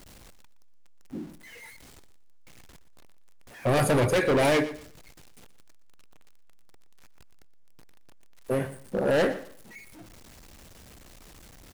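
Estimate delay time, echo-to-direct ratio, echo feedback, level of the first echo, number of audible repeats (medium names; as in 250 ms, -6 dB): 119 ms, -14.5 dB, 24%, -15.0 dB, 2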